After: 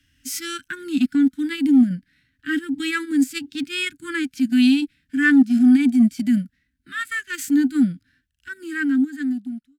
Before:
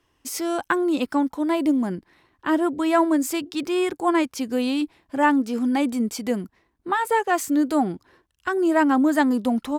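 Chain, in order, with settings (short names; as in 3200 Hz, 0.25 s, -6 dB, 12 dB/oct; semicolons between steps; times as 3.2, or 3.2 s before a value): ending faded out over 1.85 s; Chebyshev band-stop 270–1500 Hz, order 4; harmonic-percussive split percussive -13 dB; in parallel at -9 dB: hard clip -20 dBFS, distortion -21 dB; on the sum: transient shaper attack -3 dB, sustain -8 dB; gain +8 dB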